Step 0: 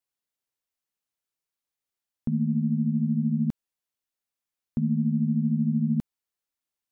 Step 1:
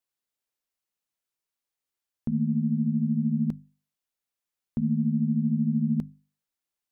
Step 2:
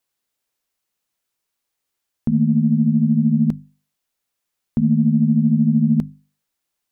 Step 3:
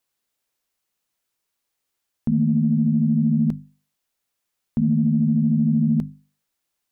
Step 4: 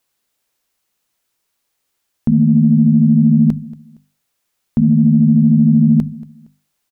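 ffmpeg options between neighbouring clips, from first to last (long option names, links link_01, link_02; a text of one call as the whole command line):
ffmpeg -i in.wav -af "bandreject=frequency=50:width_type=h:width=6,bandreject=frequency=100:width_type=h:width=6,bandreject=frequency=150:width_type=h:width=6,bandreject=frequency=200:width_type=h:width=6,bandreject=frequency=250:width_type=h:width=6" out.wav
ffmpeg -i in.wav -af "acontrast=57,volume=3dB" out.wav
ffmpeg -i in.wav -af "alimiter=limit=-13dB:level=0:latency=1:release=21" out.wav
ffmpeg -i in.wav -af "aecho=1:1:232|464:0.0891|0.0294,volume=7.5dB" out.wav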